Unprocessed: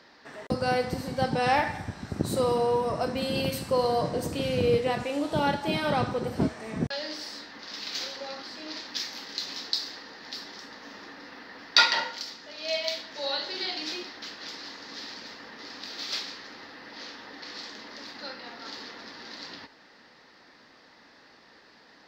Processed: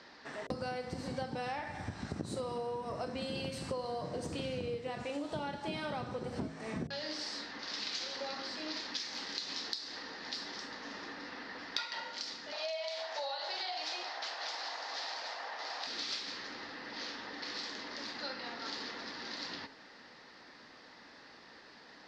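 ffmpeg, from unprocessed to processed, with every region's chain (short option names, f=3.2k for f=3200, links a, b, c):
-filter_complex "[0:a]asettb=1/sr,asplit=3[a][b][c];[a]atrim=end=12.524[d];[b]atrim=start=12.52:end=15.87,asetpts=PTS-STARTPTS,afade=t=in:d=0.004:c=qsin,afade=t=out:st=3.346:d=0.004:c=qsin,highpass=f=710:t=q:w=3.7,acompressor=threshold=-29dB:ratio=2.5:attack=3.2:release=140:knee=1:detection=peak[e];[c]atrim=start=15.866[f];[d][e]acrossfade=d=0.004:c1=hsin:c2=qsin[g];[g][f]acrossfade=d=0.004:c1=qsin:c2=hsin,lowpass=f=9k:w=0.5412,lowpass=f=9k:w=1.3066,bandreject=f=53.95:t=h:w=4,bandreject=f=107.9:t=h:w=4,bandreject=f=161.85:t=h:w=4,bandreject=f=215.8:t=h:w=4,bandreject=f=269.75:t=h:w=4,bandreject=f=323.7:t=h:w=4,bandreject=f=377.65:t=h:w=4,bandreject=f=431.6:t=h:w=4,bandreject=f=485.55:t=h:w=4,bandreject=f=539.5:t=h:w=4,bandreject=f=593.45:t=h:w=4,bandreject=f=647.4:t=h:w=4,bandreject=f=701.35:t=h:w=4,acompressor=threshold=-35dB:ratio=12"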